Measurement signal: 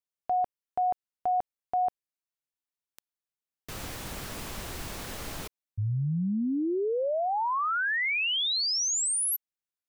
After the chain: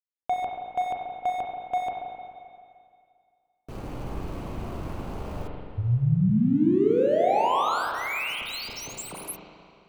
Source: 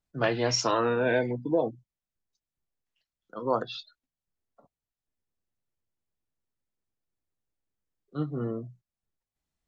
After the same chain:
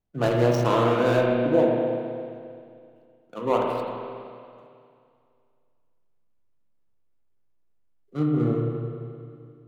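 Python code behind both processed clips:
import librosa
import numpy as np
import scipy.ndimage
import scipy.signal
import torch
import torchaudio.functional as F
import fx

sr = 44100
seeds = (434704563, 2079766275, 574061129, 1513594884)

y = scipy.signal.medfilt(x, 25)
y = fx.rev_spring(y, sr, rt60_s=2.3, pass_ms=(33, 43), chirp_ms=50, drr_db=-1.0)
y = y * librosa.db_to_amplitude(3.5)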